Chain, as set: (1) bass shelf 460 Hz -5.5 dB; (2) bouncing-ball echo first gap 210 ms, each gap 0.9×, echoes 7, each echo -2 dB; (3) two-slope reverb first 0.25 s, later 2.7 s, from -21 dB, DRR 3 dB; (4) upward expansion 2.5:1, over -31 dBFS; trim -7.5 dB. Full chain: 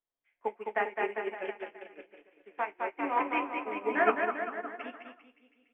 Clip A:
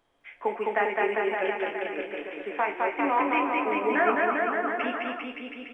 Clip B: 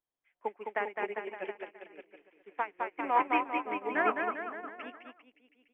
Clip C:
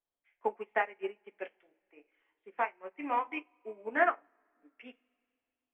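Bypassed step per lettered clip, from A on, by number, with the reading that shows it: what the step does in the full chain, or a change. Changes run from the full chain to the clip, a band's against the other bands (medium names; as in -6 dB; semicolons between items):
4, crest factor change -6.0 dB; 3, momentary loudness spread change -2 LU; 2, 250 Hz band -3.0 dB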